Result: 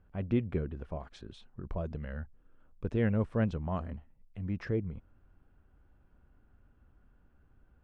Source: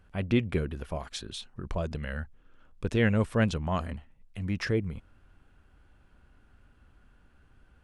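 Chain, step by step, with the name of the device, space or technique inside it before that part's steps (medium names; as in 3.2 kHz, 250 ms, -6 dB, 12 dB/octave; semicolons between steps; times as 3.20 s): through cloth (low-pass 7.5 kHz 12 dB/octave; treble shelf 2.1 kHz -17 dB); trim -3.5 dB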